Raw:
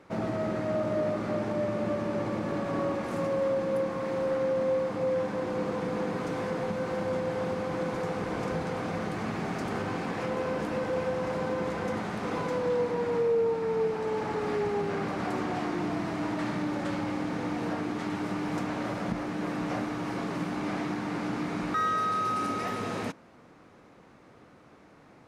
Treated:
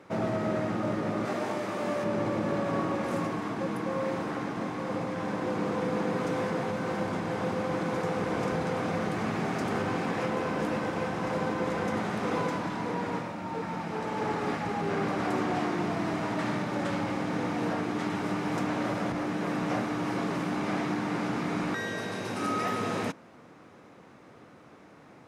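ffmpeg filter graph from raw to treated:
ffmpeg -i in.wav -filter_complex "[0:a]asettb=1/sr,asplit=3[link_01][link_02][link_03];[link_01]atrim=end=1.254[link_04];[link_02]atrim=start=1.25:end=2.04,asetpts=PTS-STARTPTS,afade=type=in:duration=0.004:curve=qsin,afade=type=out:start_time=0.786:duration=0.004:curve=qsin,highpass=frequency=340:poles=1,highshelf=frequency=6600:gain=7,asplit=2[link_05][link_06];[link_06]adelay=21,volume=-3dB[link_07];[link_05][link_07]amix=inputs=2:normalize=0,atrim=end_sample=34839[link_08];[link_03]atrim=start=2.036[link_09];[link_04][link_08]acrossfade=duration=0.004:curve1=hsin:curve2=qsin[link_10];[link_10][link_09]acrossfade=duration=0.004:curve1=qsin:curve2=hsin,highpass=84,bandreject=frequency=4400:width=26,afftfilt=real='re*lt(hypot(re,im),0.282)':imag='im*lt(hypot(re,im),0.282)':win_size=1024:overlap=0.75,volume=2.5dB" out.wav

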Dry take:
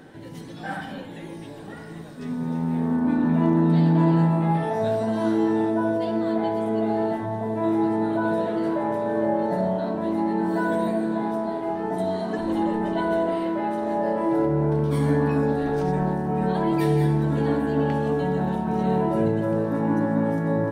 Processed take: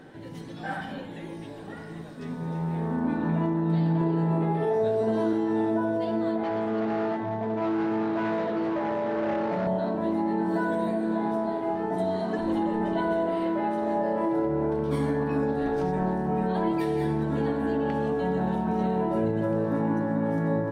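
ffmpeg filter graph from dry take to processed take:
ffmpeg -i in.wav -filter_complex "[0:a]asettb=1/sr,asplit=3[link_01][link_02][link_03];[link_01]atrim=end=4.014[link_04];[link_02]atrim=start=4.01:end=5.33,asetpts=PTS-STARTPTS,afade=type=in:duration=0.004:curve=qsin,afade=type=out:start_time=1.316:duration=0.004:curve=qsin,highpass=44,equalizer=frequency=410:width=4.6:gain=14.5[link_05];[link_03]atrim=start=5.326[link_06];[link_04][link_05]acrossfade=duration=0.004:curve1=hsin:curve2=qsin[link_07];[link_07][link_06]acrossfade=duration=0.004:curve1=qsin:curve2=hsin,asettb=1/sr,asplit=3[link_08][link_09][link_10];[link_08]atrim=end=6.434[link_11];[link_09]atrim=start=6.43:end=9.67,asetpts=PTS-STARTPTS,afade=type=in:duration=0.004:curve=qsin,afade=type=out:start_time=3.236:duration=0.004:curve=qsin,asoftclip=type=hard:threshold=-23dB,highpass=110,lowpass=5600[link_12];[link_10]atrim=start=9.666[link_13];[link_11][link_12]acrossfade=duration=0.004:curve1=hsin:curve2=qsin[link_14];[link_14][link_13]acrossfade=duration=0.004:curve1=qsin:curve2=hsin,highshelf=frequency=6700:gain=-7,bandreject=frequency=49.19:width_type=h:width=4,bandreject=frequency=98.38:width_type=h:width=4,bandreject=frequency=147.57:width_type=h:width=4,bandreject=frequency=196.76:width_type=h:width=4,bandreject=frequency=245.95:width_type=h:width=4,bandreject=frequency=295.14:width_type=h:width=4,alimiter=limit=-16.5dB:level=0:latency=1:release=146,volume=-1dB" out.wav

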